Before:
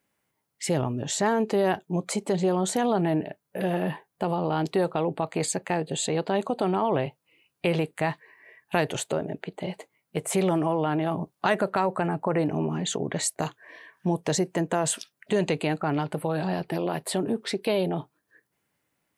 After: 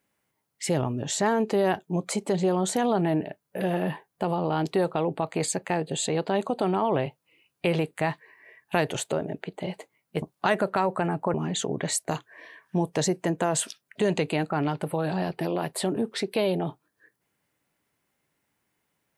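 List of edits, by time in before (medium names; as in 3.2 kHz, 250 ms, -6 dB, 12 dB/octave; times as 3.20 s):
10.22–11.22 s: delete
12.34–12.65 s: delete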